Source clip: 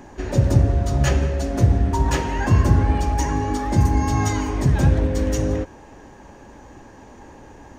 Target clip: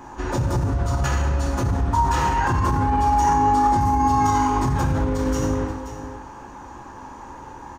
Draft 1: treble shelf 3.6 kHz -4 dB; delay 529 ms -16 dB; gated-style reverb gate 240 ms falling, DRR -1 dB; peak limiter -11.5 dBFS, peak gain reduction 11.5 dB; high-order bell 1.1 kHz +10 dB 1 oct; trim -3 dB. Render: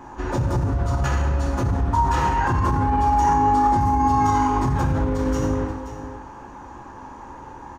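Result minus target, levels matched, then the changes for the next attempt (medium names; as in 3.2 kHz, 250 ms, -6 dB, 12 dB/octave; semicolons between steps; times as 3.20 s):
8 kHz band -4.5 dB
change: treble shelf 3.6 kHz +2.5 dB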